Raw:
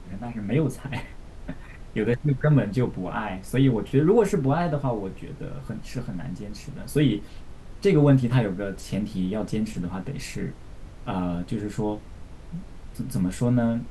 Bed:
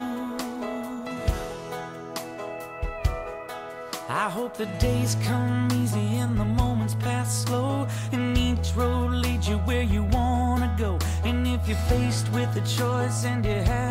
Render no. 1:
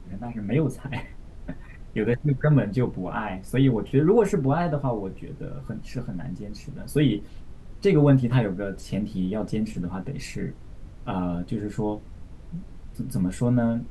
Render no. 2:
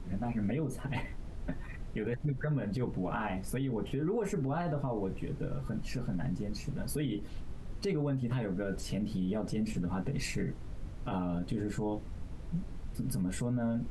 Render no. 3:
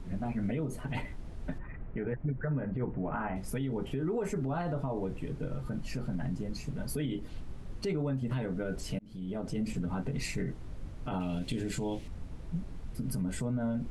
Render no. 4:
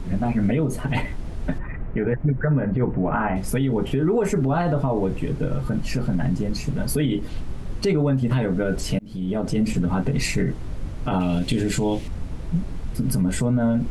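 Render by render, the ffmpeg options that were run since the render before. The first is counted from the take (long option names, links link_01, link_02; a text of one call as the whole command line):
ffmpeg -i in.wav -af "afftdn=noise_reduction=6:noise_floor=-43" out.wav
ffmpeg -i in.wav -af "acompressor=threshold=-25dB:ratio=6,alimiter=level_in=1dB:limit=-24dB:level=0:latency=1:release=59,volume=-1dB" out.wav
ffmpeg -i in.wav -filter_complex "[0:a]asettb=1/sr,asplit=3[link_01][link_02][link_03];[link_01]atrim=end=1.584[link_04];[link_02]atrim=start=1.58:end=3.36,asetpts=PTS-STARTPTS,afade=type=in:duration=0.004:curve=qsin,afade=type=out:start_time=1.776:duration=0.004:curve=qsin,lowpass=frequency=2100:width=0.5412,lowpass=frequency=2100:width=1.3066[link_05];[link_03]atrim=start=3.356[link_06];[link_04][link_05]acrossfade=duration=0.004:curve1=hsin:curve2=qsin[link_07];[link_07][link_06]acrossfade=duration=0.004:curve1=qsin:curve2=hsin,asettb=1/sr,asplit=3[link_08][link_09][link_10];[link_08]atrim=end=11.204[link_11];[link_09]atrim=start=11.2:end=12.08,asetpts=PTS-STARTPTS,afade=type=in:duration=0.004:curve=qsin,afade=type=out:start_time=0.876:duration=0.004:curve=qsin,highshelf=frequency=1900:width_type=q:width=1.5:gain=8.5[link_12];[link_10]atrim=start=12.076[link_13];[link_11][link_12]acrossfade=duration=0.004:curve1=hsin:curve2=qsin[link_14];[link_14][link_13]acrossfade=duration=0.004:curve1=qsin:curve2=hsin,asplit=2[link_15][link_16];[link_15]atrim=end=8.99,asetpts=PTS-STARTPTS,afade=type=out:start_time=8.986:duration=0.004:curve=hsin[link_17];[link_16]atrim=start=8.99,asetpts=PTS-STARTPTS,afade=type=in:duration=0.71:curve=qsin[link_18];[link_17][link_18]concat=n=2:v=0:a=1" out.wav
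ffmpeg -i in.wav -af "volume=12dB" out.wav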